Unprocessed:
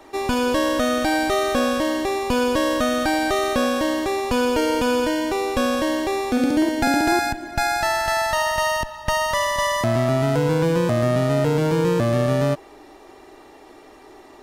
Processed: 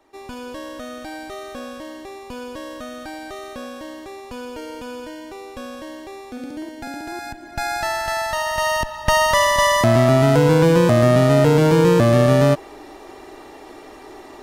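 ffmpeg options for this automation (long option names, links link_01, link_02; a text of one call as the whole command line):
ffmpeg -i in.wav -af "volume=5.5dB,afade=type=in:start_time=7.13:duration=0.64:silence=0.281838,afade=type=in:start_time=8.45:duration=0.73:silence=0.421697" out.wav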